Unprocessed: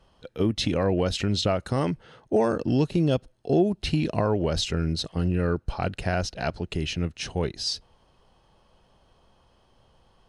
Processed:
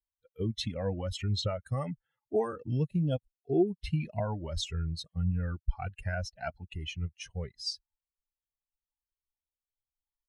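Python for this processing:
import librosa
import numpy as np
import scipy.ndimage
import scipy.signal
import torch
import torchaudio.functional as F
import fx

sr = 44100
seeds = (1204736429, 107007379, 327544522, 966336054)

y = fx.bin_expand(x, sr, power=2.0)
y = fx.low_shelf(y, sr, hz=390.0, db=3.0)
y = fx.comb_cascade(y, sr, direction='rising', hz=0.88)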